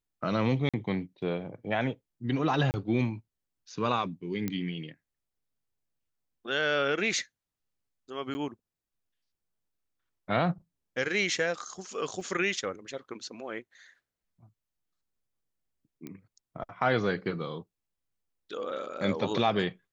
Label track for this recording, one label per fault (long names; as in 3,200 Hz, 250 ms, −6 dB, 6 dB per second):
0.690000	0.740000	drop-out 46 ms
2.710000	2.740000	drop-out 29 ms
4.480000	4.480000	click −17 dBFS
8.340000	8.350000	drop-out 10 ms
12.210000	12.210000	drop-out 2.5 ms
16.070000	16.070000	click −27 dBFS